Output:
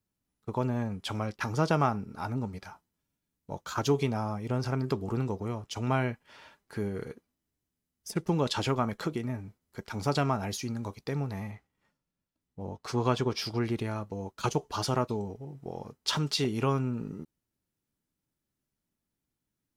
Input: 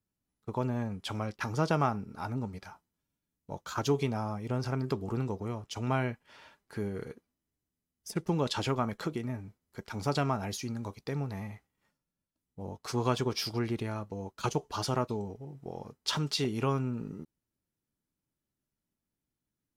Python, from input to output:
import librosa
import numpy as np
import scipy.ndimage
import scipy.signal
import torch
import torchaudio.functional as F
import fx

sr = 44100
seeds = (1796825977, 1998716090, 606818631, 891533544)

y = fx.high_shelf(x, sr, hz=7300.0, db=-9.5, at=(11.51, 13.62))
y = y * librosa.db_to_amplitude(2.0)